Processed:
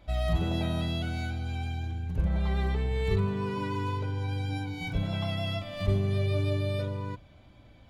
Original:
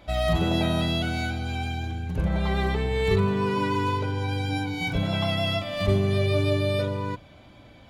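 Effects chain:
low-shelf EQ 99 Hz +11.5 dB
level −8.5 dB

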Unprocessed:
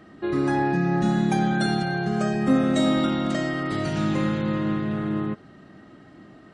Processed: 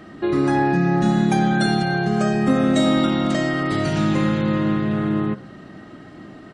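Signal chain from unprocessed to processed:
hum removal 66.55 Hz, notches 29
in parallel at 0 dB: downward compressor, threshold −30 dBFS, peak gain reduction 12.5 dB
on the sum: slap from a distant wall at 26 metres, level −27 dB
level +2 dB

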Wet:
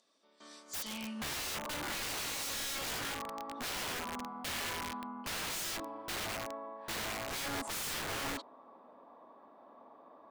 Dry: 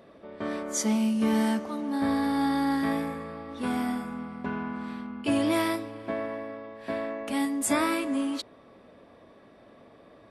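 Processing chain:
octave-band graphic EQ 250/1,000/2,000/4,000/8,000 Hz +11/+6/−4/+4/+6 dB
band-pass filter sweep 6,400 Hz → 920 Hz, 0:00.62–0:01.39
wrap-around overflow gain 33.5 dB

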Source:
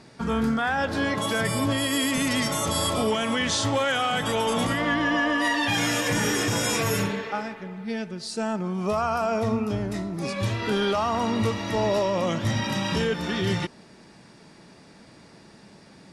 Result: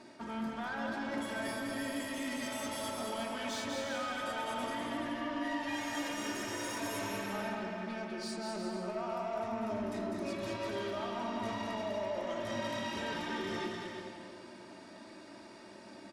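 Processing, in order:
high-pass filter 600 Hz 6 dB per octave
tilt shelving filter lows +5 dB
comb filter 3.2 ms, depth 69%
reversed playback
downward compressor 12 to 1, threshold −32 dBFS, peak gain reduction 14 dB
reversed playback
soft clipping −33 dBFS, distortion −15 dB
bouncing-ball delay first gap 200 ms, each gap 0.7×, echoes 5
on a send at −3 dB: convolution reverb RT60 2.2 s, pre-delay 7 ms
on the sum: level −3 dB

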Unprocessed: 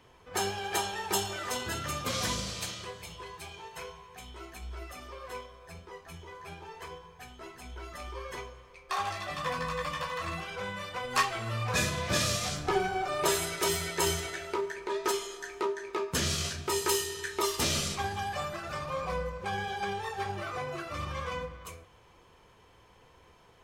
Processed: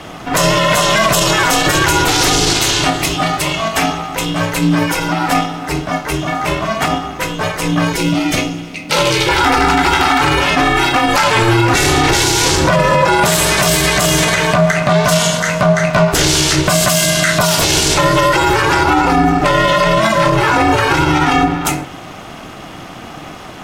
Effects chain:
ring modulation 230 Hz
0:07.92–0:09.29: flat-topped bell 1,100 Hz −10.5 dB
boost into a limiter +32 dB
level −1 dB

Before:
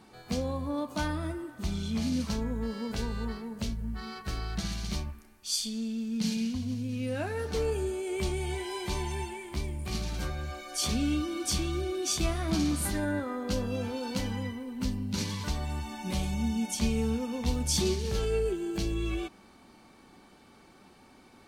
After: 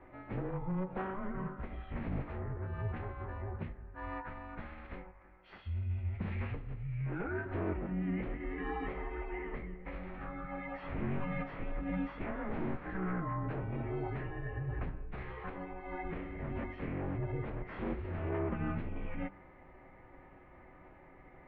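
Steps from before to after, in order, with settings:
wave folding −26 dBFS
downward compressor, threshold −35 dBFS, peak gain reduction 6.5 dB
phase-vocoder pitch shift with formants kept −8 semitones
single-sideband voice off tune −190 Hz 180–2,300 Hz
hum removal 48.67 Hz, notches 32
level +4 dB

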